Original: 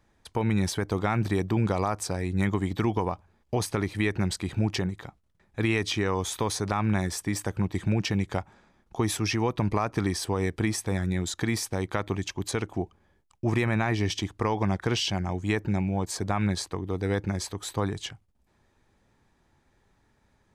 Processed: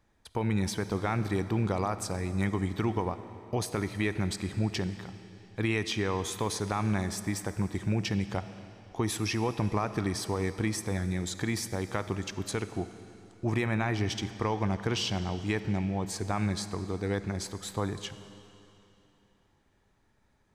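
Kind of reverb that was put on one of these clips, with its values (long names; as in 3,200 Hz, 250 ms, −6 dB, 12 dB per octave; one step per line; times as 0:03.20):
comb and all-pass reverb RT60 3 s, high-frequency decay 0.95×, pre-delay 10 ms, DRR 11.5 dB
level −3.5 dB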